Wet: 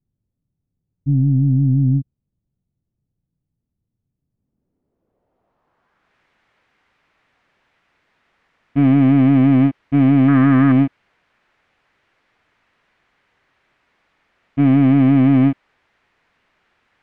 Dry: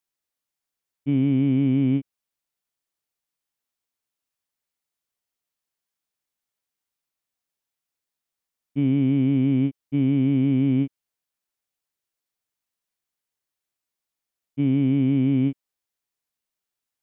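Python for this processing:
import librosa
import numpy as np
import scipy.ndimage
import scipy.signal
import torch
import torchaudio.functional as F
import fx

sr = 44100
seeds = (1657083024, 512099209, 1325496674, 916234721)

y = fx.power_curve(x, sr, exponent=0.7)
y = fx.band_shelf(y, sr, hz=1400.0, db=11.5, octaves=1.0, at=(10.28, 10.72))
y = fx.filter_sweep_lowpass(y, sr, from_hz=140.0, to_hz=2000.0, start_s=4.18, end_s=6.18, q=1.4)
y = y * librosa.db_to_amplitude(6.5)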